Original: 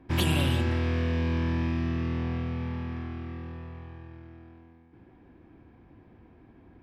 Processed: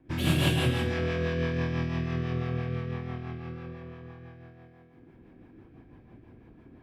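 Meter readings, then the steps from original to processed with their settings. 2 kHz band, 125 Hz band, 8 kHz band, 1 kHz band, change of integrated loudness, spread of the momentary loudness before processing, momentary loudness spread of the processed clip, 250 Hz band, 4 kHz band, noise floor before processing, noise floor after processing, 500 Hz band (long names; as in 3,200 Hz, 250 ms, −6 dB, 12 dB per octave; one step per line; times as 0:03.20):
+2.0 dB, −0.5 dB, can't be measured, −0.5 dB, −0.5 dB, 19 LU, 19 LU, −1.0 dB, +1.0 dB, −56 dBFS, −56 dBFS, +3.0 dB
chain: reverb whose tail is shaped and stops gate 340 ms flat, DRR −6.5 dB
rotating-speaker cabinet horn 6 Hz
level −4 dB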